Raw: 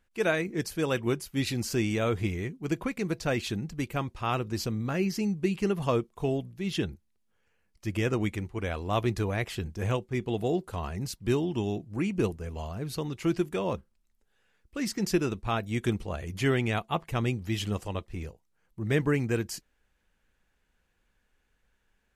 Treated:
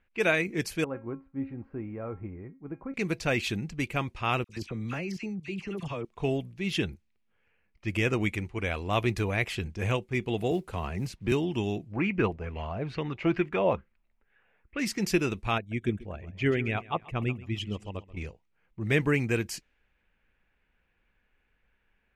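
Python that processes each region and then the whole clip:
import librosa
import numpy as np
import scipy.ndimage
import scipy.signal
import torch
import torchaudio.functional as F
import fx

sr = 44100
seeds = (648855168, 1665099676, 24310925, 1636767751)

y = fx.chain(x, sr, fx.lowpass(hz=1300.0, slope=24),
    fx.comb_fb(f0_hz=270.0, decay_s=0.3, harmonics='all', damping=0.0, mix_pct=70), at=(0.84, 2.94))
y = fx.chain(y, sr, fx.level_steps(step_db=17),
    fx.dispersion(late='lows', ms=53.0, hz=1400.0), at=(4.44, 6.05))
y = fx.chain(y, sr, fx.high_shelf(hz=2500.0, db=-8.0),
    fx.quant_companded(bits=8),
    fx.band_squash(depth_pct=40), at=(10.51, 11.32))
y = fx.chain(y, sr, fx.lowpass(hz=2800.0, slope=12),
    fx.bell_lfo(hz=2.3, low_hz=600.0, high_hz=2100.0, db=10), at=(11.92, 14.79))
y = fx.chain(y, sr, fx.envelope_sharpen(power=1.5),
    fx.echo_feedback(ms=134, feedback_pct=42, wet_db=-14.5),
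    fx.upward_expand(threshold_db=-40.0, expansion=1.5), at=(15.58, 18.17))
y = fx.env_lowpass(y, sr, base_hz=2600.0, full_db=-28.0)
y = fx.peak_eq(y, sr, hz=2400.0, db=8.0, octaves=0.67)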